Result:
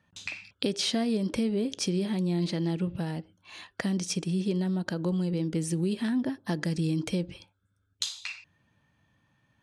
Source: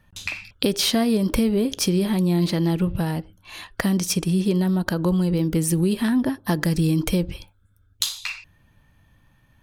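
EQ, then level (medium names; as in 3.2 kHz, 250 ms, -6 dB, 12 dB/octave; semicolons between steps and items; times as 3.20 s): high-pass 120 Hz 12 dB/octave; low-pass 8.6 kHz 24 dB/octave; dynamic bell 1.1 kHz, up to -5 dB, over -44 dBFS, Q 1.8; -7.0 dB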